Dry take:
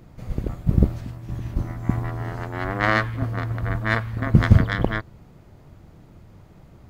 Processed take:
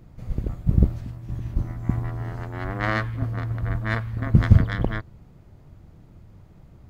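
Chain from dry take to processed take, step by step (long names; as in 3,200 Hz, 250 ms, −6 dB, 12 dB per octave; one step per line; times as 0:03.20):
low-shelf EQ 180 Hz +7 dB
level −5.5 dB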